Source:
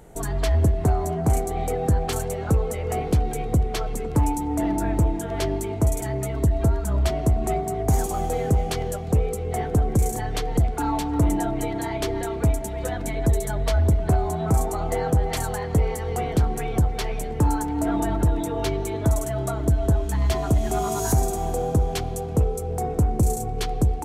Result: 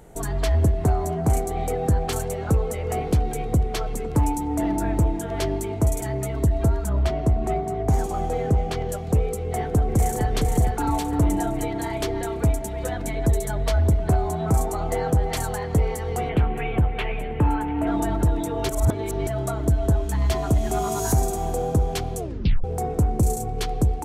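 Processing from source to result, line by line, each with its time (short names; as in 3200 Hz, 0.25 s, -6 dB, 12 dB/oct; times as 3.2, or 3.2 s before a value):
6.89–8.89 LPF 3300 Hz 6 dB/oct
9.42–10.31 echo throw 0.46 s, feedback 45%, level -4 dB
16.29–17.87 resonant high shelf 3800 Hz -12.5 dB, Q 3
18.69–19.27 reverse
22.17 tape stop 0.47 s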